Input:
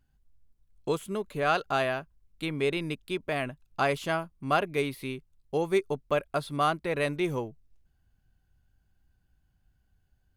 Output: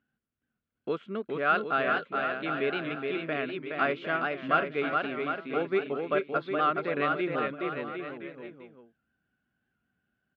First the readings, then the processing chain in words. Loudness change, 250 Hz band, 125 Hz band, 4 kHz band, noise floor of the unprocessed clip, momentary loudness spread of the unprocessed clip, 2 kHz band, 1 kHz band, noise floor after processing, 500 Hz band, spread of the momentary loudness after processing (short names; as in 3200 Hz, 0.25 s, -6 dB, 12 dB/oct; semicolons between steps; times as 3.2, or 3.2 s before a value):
+0.5 dB, 0.0 dB, -6.5 dB, -3.0 dB, -71 dBFS, 9 LU, +3.5 dB, +1.5 dB, -85 dBFS, -0.5 dB, 9 LU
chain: speaker cabinet 220–3200 Hz, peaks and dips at 230 Hz +7 dB, 900 Hz -9 dB, 1400 Hz +8 dB; on a send: bouncing-ball echo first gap 0.42 s, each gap 0.8×, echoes 5; on the sum: record warp 78 rpm, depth 100 cents; gain -2 dB